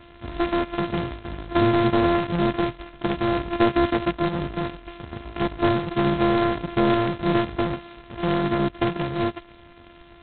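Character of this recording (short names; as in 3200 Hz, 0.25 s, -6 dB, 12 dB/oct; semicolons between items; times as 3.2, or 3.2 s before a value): a buzz of ramps at a fixed pitch in blocks of 128 samples; G.726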